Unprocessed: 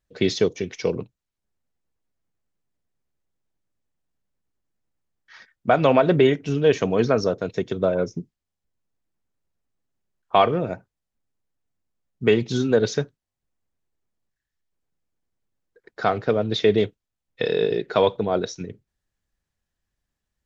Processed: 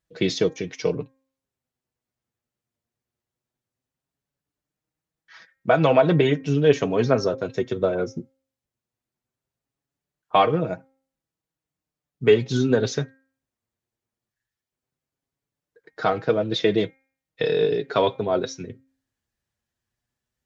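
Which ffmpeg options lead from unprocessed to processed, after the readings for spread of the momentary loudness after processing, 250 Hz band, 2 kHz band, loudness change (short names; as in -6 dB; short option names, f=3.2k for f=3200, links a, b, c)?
13 LU, -0.5 dB, 0.0 dB, -0.5 dB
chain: -af "highpass=52,bandreject=f=266.8:t=h:w=4,bandreject=f=533.6:t=h:w=4,bandreject=f=800.4:t=h:w=4,bandreject=f=1.0672k:t=h:w=4,bandreject=f=1.334k:t=h:w=4,bandreject=f=1.6008k:t=h:w=4,bandreject=f=1.8676k:t=h:w=4,bandreject=f=2.1344k:t=h:w=4,bandreject=f=2.4012k:t=h:w=4,flanger=delay=6.1:depth=2.4:regen=34:speed=0.18:shape=sinusoidal,volume=3.5dB"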